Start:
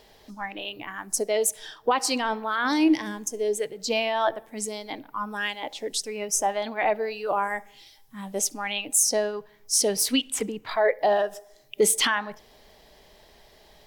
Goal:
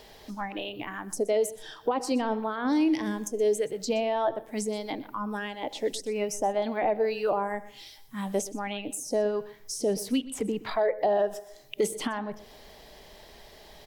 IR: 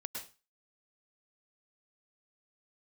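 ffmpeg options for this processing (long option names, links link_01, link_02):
-filter_complex "[0:a]acrossover=split=690[link_01][link_02];[link_01]alimiter=limit=-23dB:level=0:latency=1:release=91[link_03];[link_02]acompressor=threshold=-39dB:ratio=12[link_04];[link_03][link_04]amix=inputs=2:normalize=0,aecho=1:1:123:0.126,volume=4dB"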